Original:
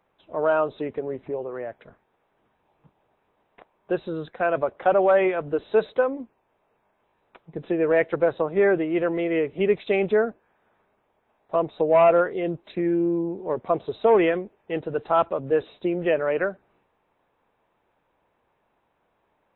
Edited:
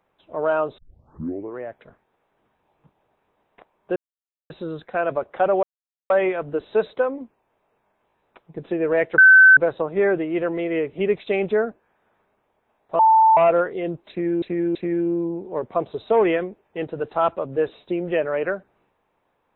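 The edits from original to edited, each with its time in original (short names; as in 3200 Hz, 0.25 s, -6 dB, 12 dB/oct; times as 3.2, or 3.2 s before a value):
0.78 tape start 0.80 s
3.96 insert silence 0.54 s
5.09 insert silence 0.47 s
8.17 add tone 1530 Hz -6.5 dBFS 0.39 s
11.59–11.97 bleep 887 Hz -10.5 dBFS
12.69–13.02 loop, 3 plays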